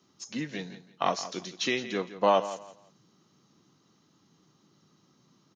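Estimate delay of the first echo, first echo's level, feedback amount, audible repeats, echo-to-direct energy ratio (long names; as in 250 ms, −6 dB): 168 ms, −14.0 dB, 24%, 2, −13.5 dB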